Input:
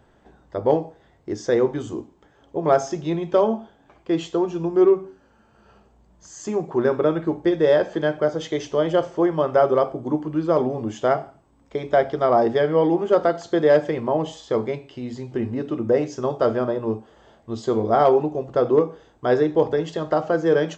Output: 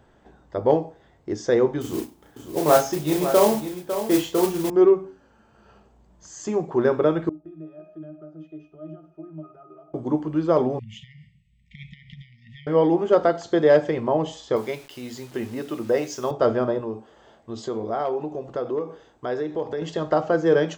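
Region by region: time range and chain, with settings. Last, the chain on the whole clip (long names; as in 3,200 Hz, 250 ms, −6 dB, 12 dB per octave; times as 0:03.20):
0:01.81–0:04.70: double-tracking delay 33 ms −3 dB + noise that follows the level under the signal 14 dB + single-tap delay 552 ms −10 dB
0:07.29–0:09.94: parametric band 86 Hz −10.5 dB 1.3 octaves + downward compressor, threshold −23 dBFS + resonances in every octave D#, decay 0.26 s
0:10.79–0:12.67: high shelf with overshoot 4,100 Hz −9 dB, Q 1.5 + downward compressor 10 to 1, threshold −28 dBFS + linear-phase brick-wall band-stop 210–1,800 Hz
0:14.56–0:16.31: spectral tilt +2.5 dB per octave + bit-depth reduction 8 bits, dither none
0:16.81–0:19.82: low-shelf EQ 150 Hz −7 dB + downward compressor 2 to 1, threshold −29 dBFS
whole clip: no processing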